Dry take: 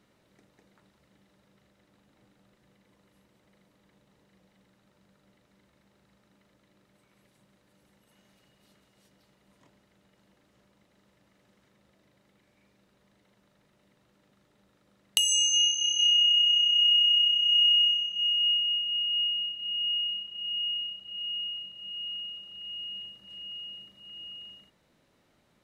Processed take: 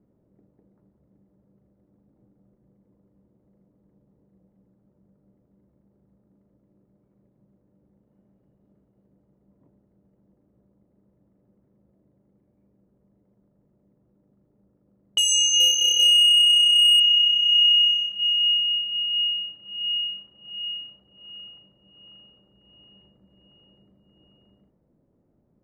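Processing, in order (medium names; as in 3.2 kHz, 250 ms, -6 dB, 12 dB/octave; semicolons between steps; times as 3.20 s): level-controlled noise filter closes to 410 Hz, open at -22 dBFS; 15.60–17.00 s: waveshaping leveller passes 1; trim +4.5 dB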